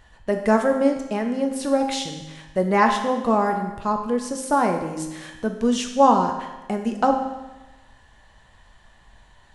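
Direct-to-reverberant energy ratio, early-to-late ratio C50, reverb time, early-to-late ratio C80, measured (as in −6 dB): 3.5 dB, 6.5 dB, 1.1 s, 8.5 dB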